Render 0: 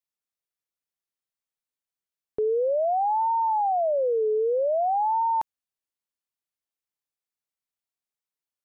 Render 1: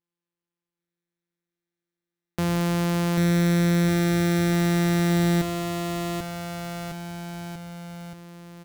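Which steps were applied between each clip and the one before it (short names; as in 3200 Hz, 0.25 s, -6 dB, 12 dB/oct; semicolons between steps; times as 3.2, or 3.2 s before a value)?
sample sorter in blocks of 256 samples; on a send: bouncing-ball echo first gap 0.79 s, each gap 0.9×, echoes 5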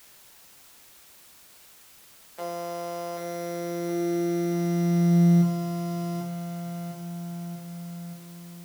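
resonator bank C#3 major, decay 0.43 s; high-pass sweep 550 Hz -> 120 Hz, 3.33–5.83; requantised 10-bit, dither triangular; gain +7.5 dB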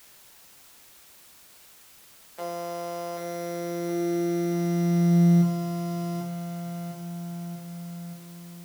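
nothing audible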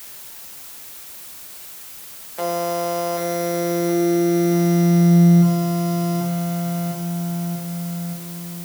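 high shelf 8900 Hz +6.5 dB; in parallel at +2 dB: limiter -23 dBFS, peak gain reduction 11.5 dB; on the sum: gain +3.5 dB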